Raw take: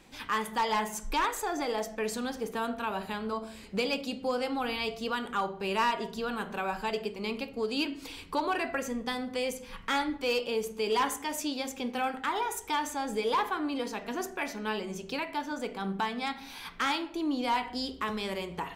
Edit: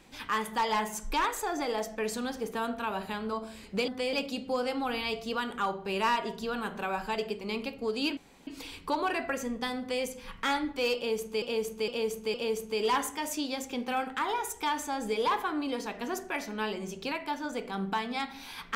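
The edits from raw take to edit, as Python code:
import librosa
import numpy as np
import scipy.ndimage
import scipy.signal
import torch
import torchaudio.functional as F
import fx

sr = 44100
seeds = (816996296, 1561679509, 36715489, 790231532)

y = fx.edit(x, sr, fx.insert_room_tone(at_s=7.92, length_s=0.3),
    fx.duplicate(start_s=9.24, length_s=0.25, to_s=3.88),
    fx.repeat(start_s=10.41, length_s=0.46, count=4), tone=tone)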